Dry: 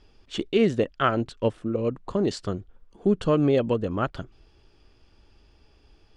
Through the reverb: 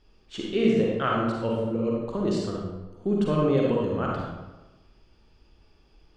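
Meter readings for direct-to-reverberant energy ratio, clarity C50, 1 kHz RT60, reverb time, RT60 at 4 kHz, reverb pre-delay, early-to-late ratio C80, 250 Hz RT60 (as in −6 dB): −3.0 dB, −1.5 dB, 1.1 s, 1.1 s, 0.75 s, 39 ms, 2.0 dB, 1.2 s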